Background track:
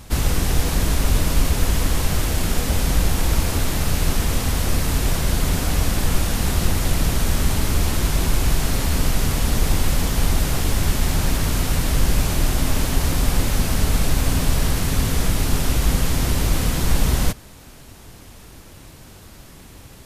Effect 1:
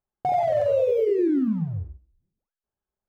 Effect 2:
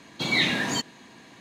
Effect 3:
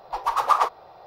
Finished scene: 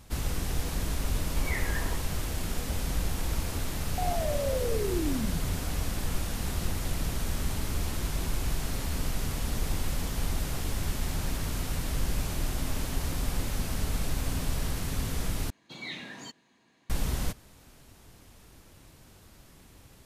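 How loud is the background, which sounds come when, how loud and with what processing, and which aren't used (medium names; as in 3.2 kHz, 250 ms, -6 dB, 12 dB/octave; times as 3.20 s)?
background track -11.5 dB
1.15 s: add 2 -8 dB + elliptic band-pass 380–2000 Hz
3.73 s: add 1 -10 dB
15.50 s: replace with 2 -16.5 dB
not used: 3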